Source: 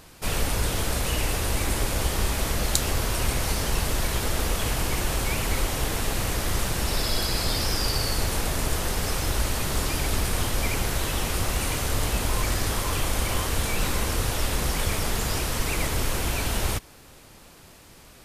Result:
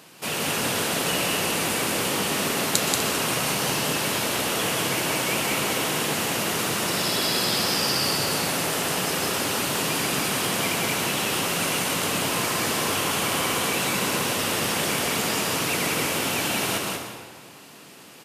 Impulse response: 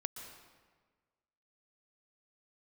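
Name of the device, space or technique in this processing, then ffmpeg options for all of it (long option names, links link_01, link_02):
stadium PA: -filter_complex "[0:a]highpass=frequency=150:width=0.5412,highpass=frequency=150:width=1.3066,equalizer=frequency=2800:width_type=o:width=0.38:gain=4.5,aecho=1:1:183.7|247.8:0.708|0.282[link_01];[1:a]atrim=start_sample=2205[link_02];[link_01][link_02]afir=irnorm=-1:irlink=0,volume=3dB"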